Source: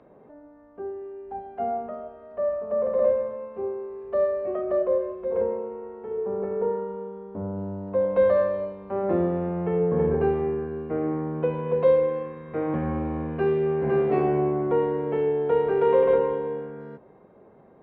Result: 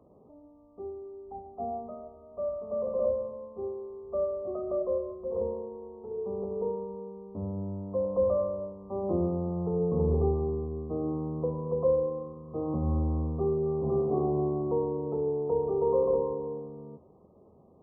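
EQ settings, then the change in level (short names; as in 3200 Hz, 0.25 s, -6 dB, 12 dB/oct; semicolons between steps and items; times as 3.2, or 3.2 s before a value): brick-wall FIR low-pass 1300 Hz; bell 81 Hz +11.5 dB 0.23 oct; low shelf 400 Hz +7 dB; -9.0 dB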